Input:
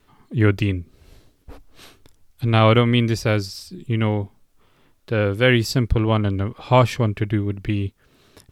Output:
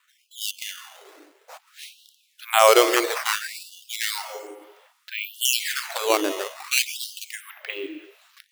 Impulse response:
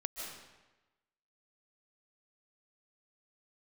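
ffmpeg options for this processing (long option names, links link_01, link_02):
-filter_complex "[0:a]dynaudnorm=framelen=130:gausssize=13:maxgain=11.5dB,asplit=2[link_01][link_02];[1:a]atrim=start_sample=2205[link_03];[link_02][link_03]afir=irnorm=-1:irlink=0,volume=-7.5dB[link_04];[link_01][link_04]amix=inputs=2:normalize=0,acrusher=samples=8:mix=1:aa=0.000001:lfo=1:lforange=12.8:lforate=0.35,asettb=1/sr,asplit=3[link_05][link_06][link_07];[link_05]atrim=end=7.424[link_08];[link_06]atrim=start=7.42:end=7.84,asetpts=PTS-STARTPTS,afade=type=in:duration=0.004:curve=qsin,afade=type=out:start_time=0.416:duration=0.004:curve=qsin,bandreject=frequency=7300:width=9.5[link_09];[link_07]atrim=start=7.836[link_10];[link_08][link_09]acrossfade=duration=0.004:curve1=hsin:curve2=qsin[link_11];[link_11][link_10]acrossfade=duration=0.004:curve1=qsin:curve2=hsin,afftfilt=real='re*gte(b*sr/1024,290*pow(2800/290,0.5+0.5*sin(2*PI*0.6*pts/sr)))':imag='im*gte(b*sr/1024,290*pow(2800/290,0.5+0.5*sin(2*PI*0.6*pts/sr)))':win_size=1024:overlap=0.75,volume=-2dB"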